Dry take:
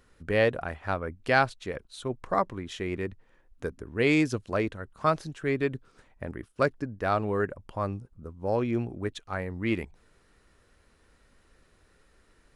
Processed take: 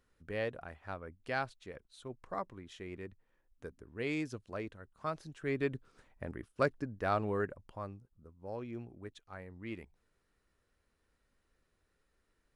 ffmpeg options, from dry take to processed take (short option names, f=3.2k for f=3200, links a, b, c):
-af "volume=-5.5dB,afade=t=in:st=5.14:d=0.54:silence=0.421697,afade=t=out:st=7.28:d=0.68:silence=0.334965"